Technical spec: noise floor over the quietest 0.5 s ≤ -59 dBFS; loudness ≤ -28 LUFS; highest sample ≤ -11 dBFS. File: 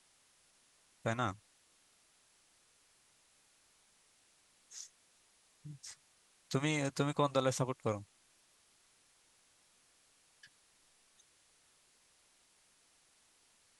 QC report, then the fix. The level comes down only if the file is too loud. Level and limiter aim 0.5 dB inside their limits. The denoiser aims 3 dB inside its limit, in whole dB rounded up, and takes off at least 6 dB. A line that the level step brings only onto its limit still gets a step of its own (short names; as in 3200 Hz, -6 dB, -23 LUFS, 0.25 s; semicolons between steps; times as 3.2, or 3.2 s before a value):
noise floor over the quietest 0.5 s -70 dBFS: OK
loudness -37.0 LUFS: OK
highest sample -17.5 dBFS: OK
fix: none